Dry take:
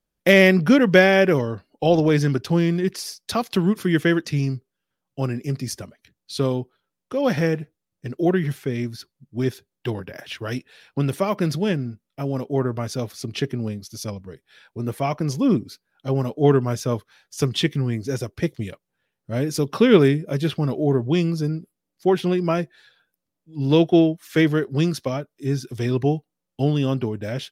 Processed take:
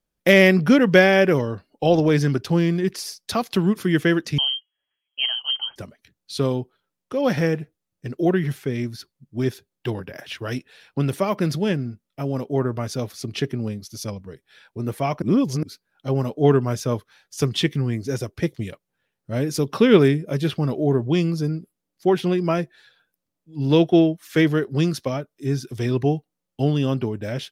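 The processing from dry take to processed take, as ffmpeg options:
-filter_complex "[0:a]asettb=1/sr,asplit=3[s0][s1][s2];[s0]atrim=end=4.384[s3];[s1]atrim=start=4.38:end=5.76,asetpts=PTS-STARTPTS,afade=t=in:d=0.004:c=qsin,afade=t=out:st=1.376:d=0.004:c=qsin,lowpass=f=2800:t=q:w=0.5098,lowpass=f=2800:t=q:w=0.6013,lowpass=f=2800:t=q:w=0.9,lowpass=f=2800:t=q:w=2.563,afreqshift=-3300[s4];[s2]atrim=start=5.756[s5];[s3][s4]acrossfade=d=0.004:c1=hsin:c2=qsin[s6];[s6][s5]acrossfade=d=0.004:c1=qsin:c2=hsin,asplit=3[s7][s8][s9];[s7]atrim=end=15.222[s10];[s8]atrim=start=15.218:end=15.632,asetpts=PTS-STARTPTS,areverse[s11];[s9]atrim=start=15.628[s12];[s10][s11]acrossfade=d=0.004:c1=hsin:c2=hsin[s13];[s13][s12]acrossfade=d=0.004:c1=hsin:c2=hsin"

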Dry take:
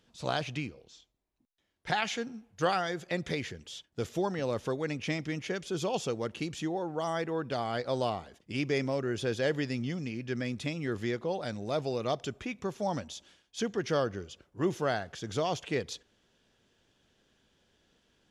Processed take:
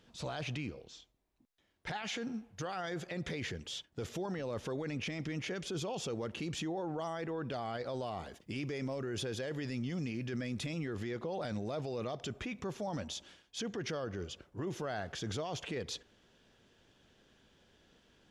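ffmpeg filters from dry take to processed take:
-filter_complex "[0:a]asettb=1/sr,asplit=3[s0][s1][s2];[s0]atrim=end=8.064[s3];[s1]atrim=start=8.06:end=10.79,asetpts=PTS-STARTPTS,afade=t=in:d=0.004:c=qsin,afade=t=out:st=2.726:d=0.004:c=qsin,highshelf=f=9000:g=9[s4];[s2]atrim=start=10.786[s5];[s3][s4]acrossfade=d=0.004:c1=hsin:c2=qsin[s6];[s6][s5]acrossfade=d=0.004:c1=qsin:c2=hsin,highshelf=f=5400:g=-5.5,acompressor=threshold=0.0251:ratio=6,alimiter=level_in=3.35:limit=0.0631:level=0:latency=1:release=10,volume=0.299,volume=1.58"

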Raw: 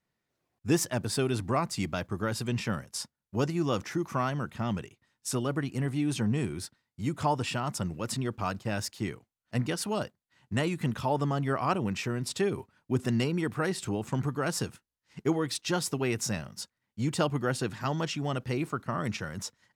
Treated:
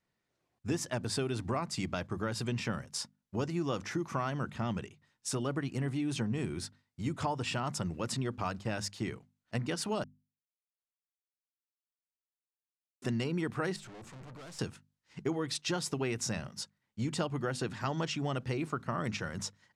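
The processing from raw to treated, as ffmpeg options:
-filter_complex "[0:a]asettb=1/sr,asplit=3[s0][s1][s2];[s0]atrim=end=13.764[s3];[s1]atrim=start=13.76:end=14.59,asetpts=PTS-STARTPTS,afade=t=in:d=0.004:c=qsin,afade=t=out:st=0.826:d=0.004:c=qsin,aeval=exprs='(tanh(224*val(0)+0.35)-tanh(0.35))/224':c=same[s4];[s2]atrim=start=14.586[s5];[s3][s4]acrossfade=d=0.004:c1=hsin:c2=qsin[s6];[s6][s5]acrossfade=d=0.004:c1=qsin:c2=hsin,asplit=3[s7][s8][s9];[s7]atrim=end=10.04,asetpts=PTS-STARTPTS,afade=t=out:st=10.036:d=0.004:c=hsin[s10];[s8]atrim=start=10.04:end=13.02,asetpts=PTS-STARTPTS,volume=0[s11];[s9]atrim=start=13.02,asetpts=PTS-STARTPTS,afade=t=in:d=0.004:c=hsin[s12];[s10][s11][s12]concat=n=3:v=0:a=1,acompressor=threshold=0.0355:ratio=6,lowpass=8800,bandreject=f=50:t=h:w=6,bandreject=f=100:t=h:w=6,bandreject=f=150:t=h:w=6,bandreject=f=200:t=h:w=6,bandreject=f=250:t=h:w=6"

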